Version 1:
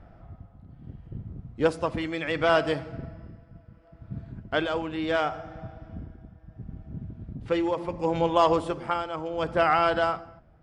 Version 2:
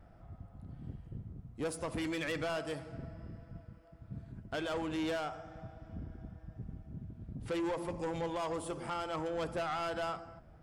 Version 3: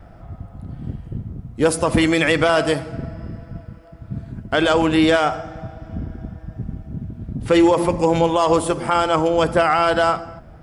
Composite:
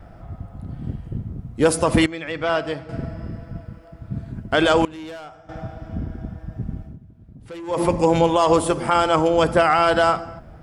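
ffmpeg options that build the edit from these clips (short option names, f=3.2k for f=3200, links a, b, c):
-filter_complex "[1:a]asplit=2[a][b];[2:a]asplit=4[c][d][e][f];[c]atrim=end=2.062[g];[0:a]atrim=start=2.058:end=2.892[h];[d]atrim=start=2.888:end=4.852[i];[a]atrim=start=4.848:end=5.492[j];[e]atrim=start=5.488:end=6.98[k];[b]atrim=start=6.82:end=7.83[l];[f]atrim=start=7.67[m];[g][h]acrossfade=d=0.004:c1=hsin:c2=hsin[n];[n][i]acrossfade=d=0.004:c1=hsin:c2=hsin[o];[o][j]acrossfade=d=0.004:c1=hsin:c2=hsin[p];[p][k]acrossfade=d=0.004:c1=hsin:c2=hsin[q];[q][l]acrossfade=d=0.16:c1=tri:c2=tri[r];[r][m]acrossfade=d=0.16:c1=tri:c2=tri"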